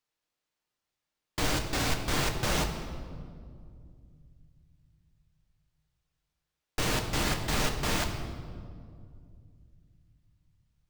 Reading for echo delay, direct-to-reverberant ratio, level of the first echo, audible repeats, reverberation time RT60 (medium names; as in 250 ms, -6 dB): no echo, 3.5 dB, no echo, no echo, 2.3 s